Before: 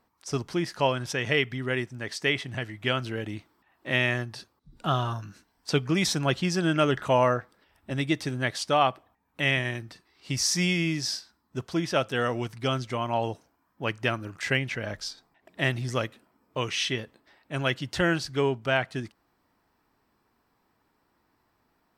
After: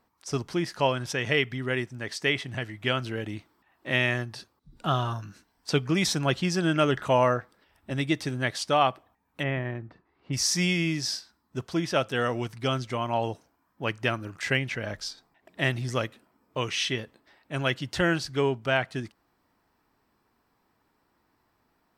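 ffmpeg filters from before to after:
-filter_complex "[0:a]asplit=3[a][b][c];[a]afade=t=out:st=9.42:d=0.02[d];[b]lowpass=1.3k,afade=t=in:st=9.42:d=0.02,afade=t=out:st=10.32:d=0.02[e];[c]afade=t=in:st=10.32:d=0.02[f];[d][e][f]amix=inputs=3:normalize=0"

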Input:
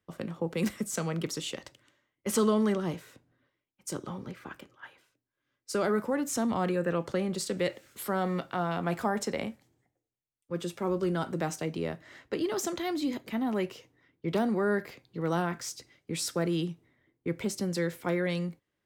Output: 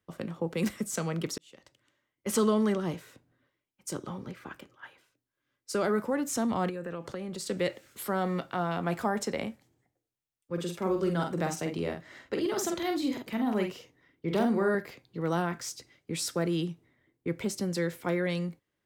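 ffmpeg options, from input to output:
-filter_complex "[0:a]asettb=1/sr,asplit=3[a][b][c];[a]atrim=end=6.694[d];[b]atrim=start=6.69:end=7.46,asetpts=PTS-STARTPTS,afade=t=in:d=0.004:c=qsin,afade=t=out:st=0.766:d=0.004:c=qsin,acompressor=threshold=-34dB:ratio=4:attack=3.2:release=140:knee=1:detection=peak[e];[c]atrim=start=7.456[f];[d][e]acrossfade=d=0.004:c1=hsin:c2=qsin[g];[g][f]acrossfade=d=0.004:c1=qsin:c2=hsin,asettb=1/sr,asplit=3[h][i][j];[h]atrim=end=10.534[k];[i]atrim=start=10.53:end=14.75,asetpts=PTS-STARTPTS,afade=t=in:d=0.004:c=qsin,afade=t=out:st=4.216:d=0.004:c=qsin,asplit=2[l][m];[m]adelay=47,volume=-5dB[n];[l][n]amix=inputs=2:normalize=0,atrim=end_sample=186102[o];[j]atrim=start=14.746[p];[k][o]acrossfade=d=0.004:c1=hsin:c2=qsin[q];[q][p]acrossfade=d=0.004:c1=qsin:c2=hsin,asplit=2[r][s];[r]atrim=end=1.38,asetpts=PTS-STARTPTS,afade=t=out:st=1.376:d=0.004:c=hsin[t];[s]atrim=start=1.38,asetpts=PTS-STARTPTS,afade=t=in:d=0.98[u];[t][u]concat=n=2:v=0:a=1"

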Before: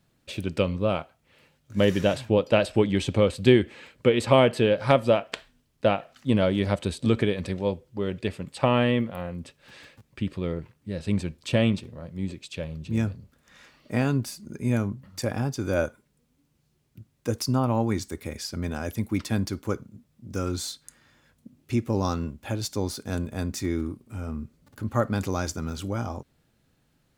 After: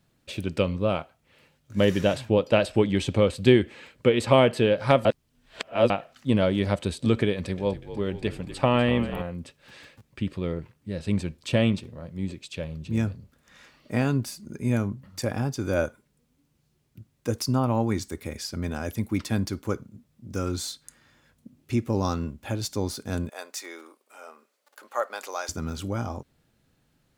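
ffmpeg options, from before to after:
-filter_complex "[0:a]asettb=1/sr,asplit=3[a][b][c];[a]atrim=end=7.334[d];[b]atrim=start=7.33:end=9.22,asetpts=PTS-STARTPTS,afade=t=in:d=0.004:c=qsin,afade=t=out:st=1.886:d=0.004:c=qsin,asplit=8[e][f][g][h][i][j][k][l];[f]adelay=245,afreqshift=-51,volume=-13dB[m];[g]adelay=490,afreqshift=-102,volume=-17.2dB[n];[h]adelay=735,afreqshift=-153,volume=-21.3dB[o];[i]adelay=980,afreqshift=-204,volume=-25.5dB[p];[j]adelay=1225,afreqshift=-255,volume=-29.6dB[q];[k]adelay=1470,afreqshift=-306,volume=-33.8dB[r];[l]adelay=1715,afreqshift=-357,volume=-37.9dB[s];[e][m][n][o][p][q][r][s]amix=inputs=8:normalize=0,atrim=end_sample=83349[t];[c]atrim=start=9.216[u];[d][t]acrossfade=d=0.004:c1=hsin:c2=qsin[v];[v][u]acrossfade=d=0.004:c1=qsin:c2=hsin,asettb=1/sr,asplit=3[w][x][y];[w]atrim=end=23.294[z];[x]atrim=start=23.29:end=25.49,asetpts=PTS-STARTPTS,afade=t=in:d=0.004:c=qsin,afade=t=out:st=2.196:d=0.004:c=qsin,highpass=f=540:w=0.5412,highpass=f=540:w=1.3066[aa];[y]atrim=start=25.486[ab];[z][aa]acrossfade=d=0.004:c1=hsin:c2=qsin[ac];[ac][ab]acrossfade=d=0.004:c1=qsin:c2=hsin,asplit=3[ad][ae][af];[ad]atrim=end=5.052[ag];[ae]atrim=start=5.048:end=5.902,asetpts=PTS-STARTPTS,areverse[ah];[af]atrim=start=5.898[ai];[ag][ah]acrossfade=d=0.004:c1=hsin:c2=hsin[aj];[aj][ai]acrossfade=d=0.004:c1=hsin:c2=hsin"

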